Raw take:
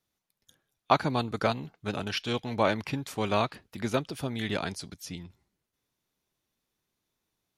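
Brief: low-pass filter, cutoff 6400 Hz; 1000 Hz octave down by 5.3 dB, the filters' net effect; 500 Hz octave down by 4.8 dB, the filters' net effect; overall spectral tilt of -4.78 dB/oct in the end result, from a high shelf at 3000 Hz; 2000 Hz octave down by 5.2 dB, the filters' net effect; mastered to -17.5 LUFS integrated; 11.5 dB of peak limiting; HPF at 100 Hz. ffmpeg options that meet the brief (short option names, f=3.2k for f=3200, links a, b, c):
-af "highpass=100,lowpass=6.4k,equalizer=f=500:t=o:g=-4.5,equalizer=f=1k:t=o:g=-4,equalizer=f=2k:t=o:g=-4,highshelf=f=3k:g=-3.5,volume=19.5dB,alimiter=limit=-3dB:level=0:latency=1"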